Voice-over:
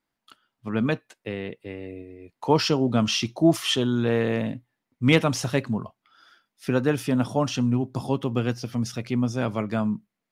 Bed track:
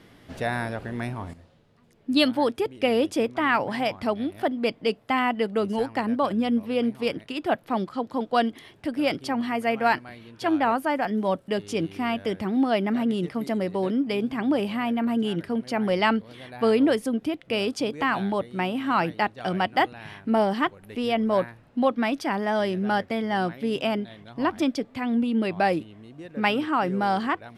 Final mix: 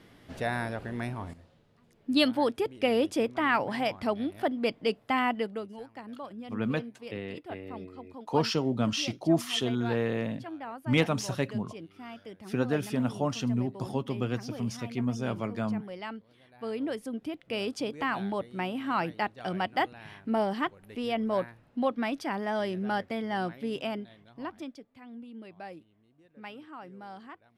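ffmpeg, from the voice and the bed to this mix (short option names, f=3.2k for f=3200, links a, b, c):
-filter_complex "[0:a]adelay=5850,volume=-6dB[a];[1:a]volume=8dB,afade=t=out:st=5.3:d=0.38:silence=0.199526,afade=t=in:st=16.51:d=1.2:silence=0.266073,afade=t=out:st=23.56:d=1.27:silence=0.177828[b];[a][b]amix=inputs=2:normalize=0"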